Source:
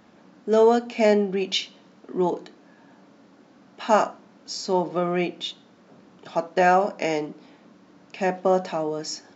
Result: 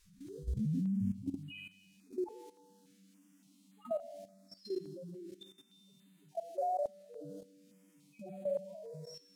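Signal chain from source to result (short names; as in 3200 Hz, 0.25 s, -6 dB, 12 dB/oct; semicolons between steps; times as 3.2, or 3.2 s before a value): tape start at the beginning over 1.87 s; bell 150 Hz +10.5 dB 0.24 oct; in parallel at +2.5 dB: compressor 8:1, threshold -30 dBFS, peak gain reduction 20 dB; on the sum: loudest bins only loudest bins 1; added noise blue -51 dBFS; resonator 97 Hz, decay 1.2 s, harmonics all, mix 90%; on a send: thinning echo 0.157 s, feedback 33%, high-pass 500 Hz, level -11 dB; on the sum: level quantiser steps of 14 dB; air absorption 56 m; stepped notch 3.5 Hz 680–5500 Hz; gain +9.5 dB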